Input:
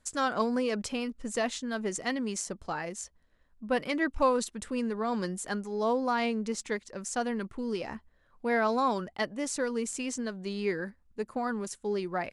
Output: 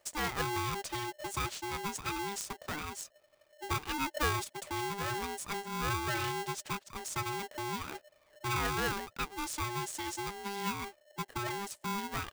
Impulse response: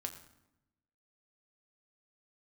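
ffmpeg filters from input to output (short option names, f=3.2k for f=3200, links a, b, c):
-filter_complex "[0:a]asplit=2[a][b];[b]acompressor=threshold=-40dB:ratio=6,volume=1.5dB[c];[a][c]amix=inputs=2:normalize=0,aeval=exprs='val(0)*sgn(sin(2*PI*600*n/s))':c=same,volume=-7.5dB"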